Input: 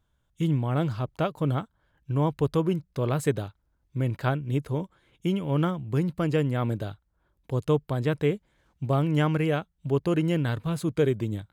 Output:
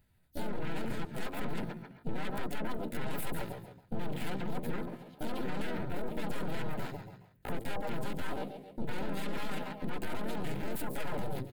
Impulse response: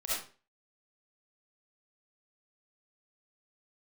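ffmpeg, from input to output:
-filter_complex "[0:a]agate=range=-9dB:threshold=-55dB:ratio=16:detection=peak,highshelf=frequency=4500:gain=8.5,bandreject=frequency=50:width_type=h:width=6,bandreject=frequency=100:width_type=h:width=6,bandreject=frequency=150:width_type=h:width=6,bandreject=frequency=200:width_type=h:width=6,bandreject=frequency=250:width_type=h:width=6,bandreject=frequency=300:width_type=h:width=6,bandreject=frequency=350:width_type=h:width=6,asplit=2[link_01][link_02];[link_02]aecho=0:1:140|280|420:0.188|0.0471|0.0118[link_03];[link_01][link_03]amix=inputs=2:normalize=0,aeval=exprs='0.355*(cos(1*acos(clip(val(0)/0.355,-1,1)))-cos(1*PI/2))+0.141*(cos(8*acos(clip(val(0)/0.355,-1,1)))-cos(8*PI/2))':channel_layout=same,asoftclip=type=tanh:threshold=-21dB,acompressor=threshold=-46dB:ratio=2.5,asplit=4[link_04][link_05][link_06][link_07];[link_05]asetrate=35002,aresample=44100,atempo=1.25992,volume=-2dB[link_08];[link_06]asetrate=55563,aresample=44100,atempo=0.793701,volume=-11dB[link_09];[link_07]asetrate=58866,aresample=44100,atempo=0.749154,volume=-3dB[link_10];[link_04][link_08][link_09][link_10]amix=inputs=4:normalize=0,asuperstop=centerf=850:order=12:qfactor=7.3,alimiter=level_in=8dB:limit=-24dB:level=0:latency=1:release=44,volume=-8dB,asetrate=58866,aresample=44100,atempo=0.749154,equalizer=frequency=5800:width_type=o:width=0.64:gain=-12,volume=7.5dB"

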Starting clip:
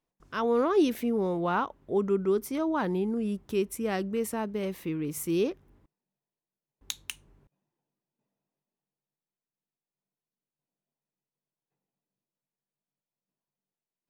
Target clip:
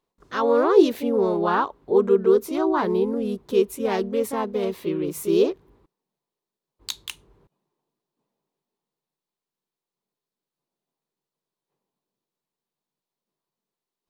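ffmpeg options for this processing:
ffmpeg -i in.wav -filter_complex "[0:a]asplit=2[link_01][link_02];[link_02]asetrate=52444,aresample=44100,atempo=0.840896,volume=-4dB[link_03];[link_01][link_03]amix=inputs=2:normalize=0,equalizer=frequency=400:width_type=o:width=0.67:gain=8,equalizer=frequency=1000:width_type=o:width=0.67:gain=7,equalizer=frequency=4000:width_type=o:width=0.67:gain=6" out.wav

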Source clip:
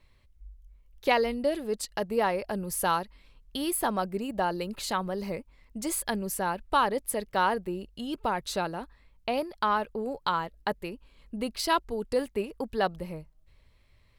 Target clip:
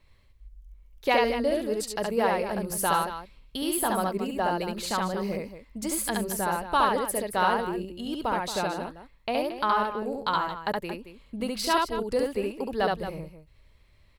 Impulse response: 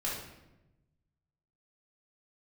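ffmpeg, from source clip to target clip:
-af "aecho=1:1:69.97|224.5:0.794|0.282"

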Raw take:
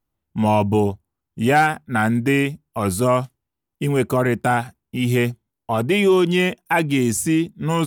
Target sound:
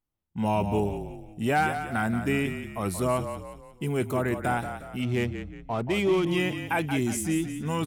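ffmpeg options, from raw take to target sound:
ffmpeg -i in.wav -filter_complex "[0:a]asplit=6[link_01][link_02][link_03][link_04][link_05][link_06];[link_02]adelay=179,afreqshift=-34,volume=-9dB[link_07];[link_03]adelay=358,afreqshift=-68,volume=-16.3dB[link_08];[link_04]adelay=537,afreqshift=-102,volume=-23.7dB[link_09];[link_05]adelay=716,afreqshift=-136,volume=-31dB[link_10];[link_06]adelay=895,afreqshift=-170,volume=-38.3dB[link_11];[link_01][link_07][link_08][link_09][link_10][link_11]amix=inputs=6:normalize=0,asettb=1/sr,asplit=3[link_12][link_13][link_14];[link_12]atrim=end=5.024[link_15];[link_13]atrim=start=5.02:end=6.27,asetpts=PTS-STARTPTS,afade=type=in:duration=0.004:curve=qsin,afade=type=out:start_time=1.246:duration=0.004:curve=qsin,adynamicsmooth=sensitivity=3:basefreq=1800[link_16];[link_14]atrim=start=6.266[link_17];[link_15][link_16]acrossfade=duration=0.004:curve1=hsin:curve2=qsin[link_18];[link_18][link_17]acrossfade=duration=0.004:curve1=qsin:curve2=hsin,volume=-8.5dB" out.wav

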